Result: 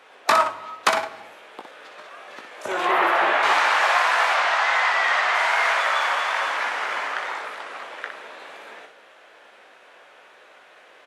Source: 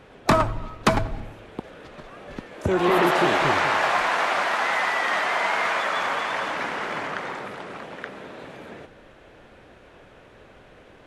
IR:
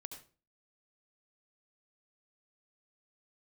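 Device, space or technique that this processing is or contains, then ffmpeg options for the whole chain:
slapback doubling: -filter_complex "[0:a]asettb=1/sr,asplit=3[a][b][c];[a]atrim=end=4.344[d];[b]atrim=start=4.34:end=5.35,asetpts=PTS-STARTPTS,afade=t=in:d=0.004:c=qsin,afade=t=out:st=1.006:d=0.004:c=qsin,lowpass=7.1k[e];[c]atrim=start=5.346[f];[d][e]acrossfade=d=0.004:c1=hsin:c2=qsin[g];[g][f]acrossfade=d=0.004:c1=qsin:c2=hsin,highpass=750,asettb=1/sr,asplit=3[h][i][j];[h]atrim=end=2.854[k];[i]atrim=start=2.85:end=3.43,asetpts=PTS-STARTPTS,afade=t=in:d=0.004:c=qsin,afade=t=out:st=0.576:d=0.004:c=qsin,acrossover=split=2900[l][m];[m]acompressor=threshold=-49dB:ratio=4:attack=1:release=60[n];[l][n]amix=inputs=2:normalize=0[o];[j]atrim=start=3.426[p];[k][o]acrossfade=d=0.004:c1=hsin:c2=qsin[q];[q][p]acrossfade=d=0.004:c1=qsin:c2=hsin,asplit=3[r][s][t];[s]adelay=18,volume=-7dB[u];[t]adelay=61,volume=-6dB[v];[r][u][v]amix=inputs=3:normalize=0,volume=2.5dB"

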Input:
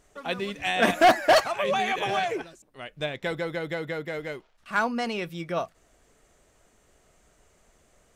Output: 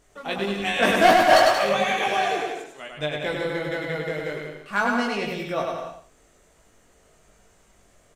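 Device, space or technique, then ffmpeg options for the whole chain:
slapback doubling: -filter_complex "[0:a]asettb=1/sr,asplit=3[a][b][c];[a]atrim=end=1.824[d];[b]atrim=start=1.82:end=2.91,asetpts=PTS-STARTPTS,afade=t=in:d=0.004:c=qsin,afade=t=out:st=1.086:d=0.004:c=qsin,bass=f=250:g=-8,treble=f=4k:g=2[e];[c]atrim=start=2.906[f];[d][e]acrossfade=d=0.004:c1=hsin:c2=qsin[g];[g][f]acrossfade=d=0.004:c1=qsin:c2=hsin,aecho=1:1:100|180|244|295.2|336.2:0.631|0.398|0.251|0.158|0.1,asplit=3[h][i][j];[i]adelay=20,volume=-4dB[k];[j]adelay=111,volume=-10dB[l];[h][k][l]amix=inputs=3:normalize=0"

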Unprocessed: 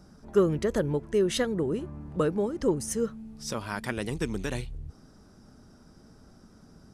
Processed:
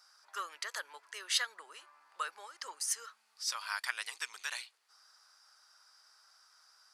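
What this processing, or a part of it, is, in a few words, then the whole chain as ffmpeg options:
headphones lying on a table: -af "highpass=f=1.1k:w=0.5412,highpass=f=1.1k:w=1.3066,equalizer=f=4.6k:t=o:w=0.27:g=8"

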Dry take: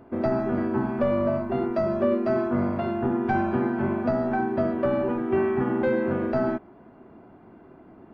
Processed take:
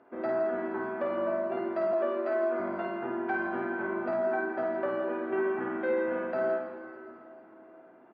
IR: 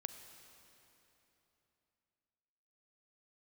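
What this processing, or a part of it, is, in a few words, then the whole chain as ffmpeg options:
station announcement: -filter_complex "[0:a]highpass=370,lowpass=3.5k,equalizer=f=1.6k:t=o:w=0.51:g=4.5,aecho=1:1:52.48|166.2:0.631|0.316[a];[1:a]atrim=start_sample=2205[b];[a][b]afir=irnorm=-1:irlink=0,asettb=1/sr,asplit=3[c][d][e];[c]atrim=end=1.934[f];[d]atrim=start=1.93:end=2.6,asetpts=PTS-STARTPTS,afade=t=in:d=0.004:c=qsin,afade=t=out:st=0.666:d=0.004:c=qsin,highpass=f=260:w=0.5412,highpass=f=260:w=1.3066[g];[e]atrim=start=2.596[h];[f][g]acrossfade=d=0.004:c1=hsin:c2=qsin[i];[i][h]acrossfade=d=0.004:c1=qsin:c2=hsin,volume=-3.5dB"

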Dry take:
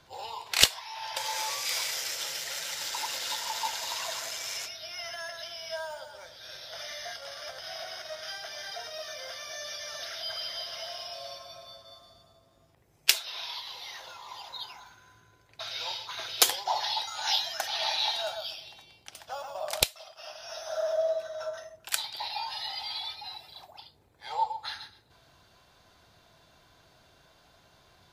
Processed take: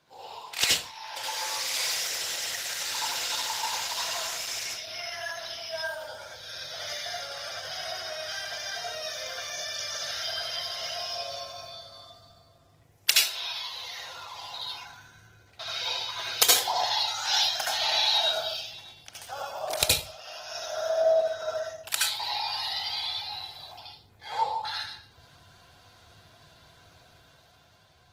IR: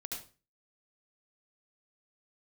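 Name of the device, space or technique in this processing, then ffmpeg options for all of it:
far-field microphone of a smart speaker: -filter_complex "[0:a]asubboost=boost=5.5:cutoff=90[a];[1:a]atrim=start_sample=2205[b];[a][b]afir=irnorm=-1:irlink=0,highpass=120,dynaudnorm=f=260:g=9:m=6dB" -ar 48000 -c:a libopus -b:a 16k

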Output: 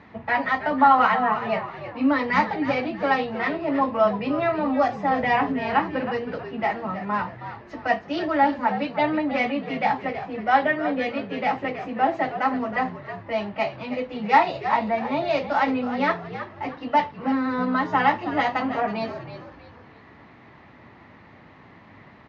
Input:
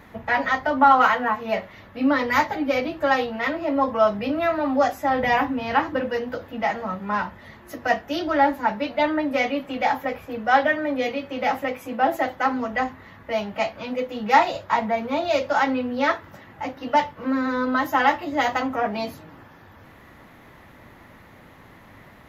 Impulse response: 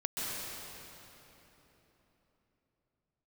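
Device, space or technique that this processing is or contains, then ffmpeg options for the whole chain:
frequency-shifting delay pedal into a guitar cabinet: -filter_complex "[0:a]asplit=5[a][b][c][d][e];[b]adelay=319,afreqshift=-74,volume=-11dB[f];[c]adelay=638,afreqshift=-148,volume=-19.4dB[g];[d]adelay=957,afreqshift=-222,volume=-27.8dB[h];[e]adelay=1276,afreqshift=-296,volume=-36.2dB[i];[a][f][g][h][i]amix=inputs=5:normalize=0,highpass=86,equalizer=f=530:t=q:w=4:g=-4,equalizer=f=1.5k:t=q:w=4:g=-4,equalizer=f=3.4k:t=q:w=4:g=-5,lowpass=f=4.5k:w=0.5412,lowpass=f=4.5k:w=1.3066"

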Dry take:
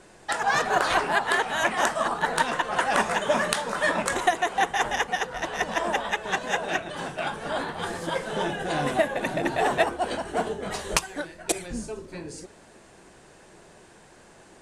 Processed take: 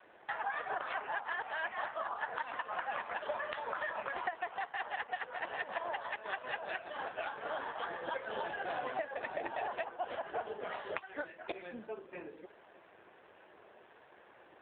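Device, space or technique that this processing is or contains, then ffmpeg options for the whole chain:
voicemail: -filter_complex "[0:a]asettb=1/sr,asplit=3[a][b][c];[a]atrim=end=4.754[d];[b]atrim=start=4.75:end=5.98,asetpts=PTS-STARTPTS,afade=t=in:d=0.004:c=qsin,afade=t=out:st=1.226:d=0.004:c=qsin,highpass=130[e];[c]atrim=start=5.976[f];[d][e]acrossfade=d=0.004:c1=hsin:c2=qsin[g];[g][f]acrossfade=d=0.004:c1=qsin:c2=hsin,adynamicequalizer=threshold=0.00794:dfrequency=340:dqfactor=1.9:tfrequency=340:tqfactor=1.9:attack=5:release=100:ratio=0.375:range=2.5:mode=cutabove:tftype=bell,highpass=420,lowpass=3.2k,acompressor=threshold=-30dB:ratio=10,volume=-2.5dB" -ar 8000 -c:a libopencore_amrnb -b:a 7400

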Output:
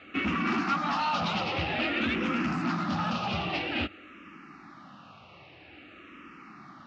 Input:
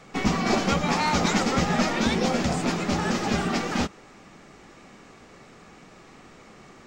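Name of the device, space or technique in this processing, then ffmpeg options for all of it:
barber-pole phaser into a guitar amplifier: -filter_complex "[0:a]asettb=1/sr,asplit=3[a][b][c];[a]atrim=end=0.644[d];[b]atrim=start=0.64:end=1.2,asetpts=PTS-STARTPTS,afade=t=in:d=0.004:c=qsin,afade=t=out:st=0.556:d=0.004:c=qsin,highpass=280[e];[c]atrim=start=1.196[f];[d][e]acrossfade=d=0.004:c1=hsin:c2=qsin[g];[g][f]acrossfade=d=0.004:c1=qsin:c2=hsin,asplit=2[h][i];[i]afreqshift=-0.51[j];[h][j]amix=inputs=2:normalize=1,asoftclip=type=tanh:threshold=-26dB,highpass=80,equalizer=f=89:t=q:w=4:g=6,equalizer=f=300:t=q:w=4:g=7,equalizer=f=440:t=q:w=4:g=-10,equalizer=f=1.3k:t=q:w=4:g=8,equalizer=f=2.7k:t=q:w=4:g=10,lowpass=f=4.4k:w=0.5412,lowpass=f=4.4k:w=1.3066"

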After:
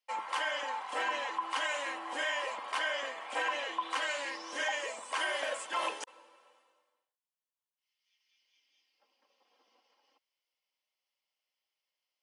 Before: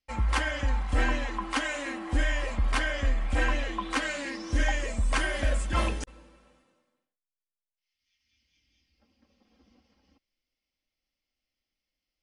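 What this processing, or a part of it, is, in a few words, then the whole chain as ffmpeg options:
laptop speaker: -af "highpass=f=440:w=0.5412,highpass=f=440:w=1.3066,equalizer=f=960:t=o:w=0.39:g=9,equalizer=f=3k:t=o:w=0.24:g=5,alimiter=limit=-20.5dB:level=0:latency=1:release=50,volume=-2.5dB"

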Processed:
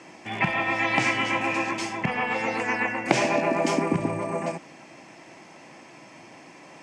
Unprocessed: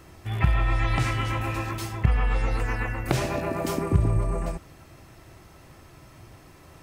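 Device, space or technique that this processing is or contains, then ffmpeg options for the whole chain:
television speaker: -af "highpass=f=200:w=0.5412,highpass=f=200:w=1.3066,equalizer=f=400:t=q:w=4:g=-6,equalizer=f=880:t=q:w=4:g=3,equalizer=f=1.3k:t=q:w=4:g=-8,equalizer=f=2.3k:t=q:w=4:g=5,equalizer=f=3.9k:t=q:w=4:g=-7,lowpass=f=7.4k:w=0.5412,lowpass=f=7.4k:w=1.3066,volume=6.5dB"

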